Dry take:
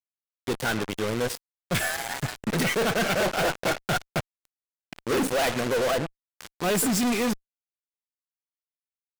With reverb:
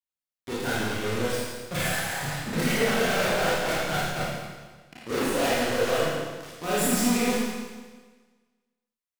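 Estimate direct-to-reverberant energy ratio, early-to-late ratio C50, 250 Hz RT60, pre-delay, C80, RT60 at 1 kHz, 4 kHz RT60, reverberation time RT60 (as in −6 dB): −8.5 dB, −3.5 dB, 1.4 s, 28 ms, −1.0 dB, 1.4 s, 1.4 s, 1.4 s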